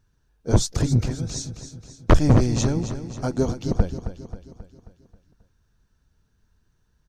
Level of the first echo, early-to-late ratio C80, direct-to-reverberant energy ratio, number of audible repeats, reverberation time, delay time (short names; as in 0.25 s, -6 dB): -11.0 dB, none, none, 5, none, 0.268 s